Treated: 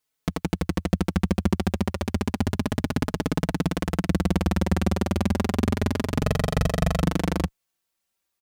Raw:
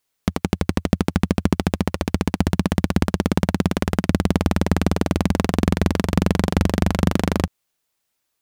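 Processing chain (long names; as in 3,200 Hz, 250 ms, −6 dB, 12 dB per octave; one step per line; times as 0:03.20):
0:06.22–0:07.02: comb filter 1.6 ms, depth 83%
barber-pole flanger 4.2 ms +0.3 Hz
level −1.5 dB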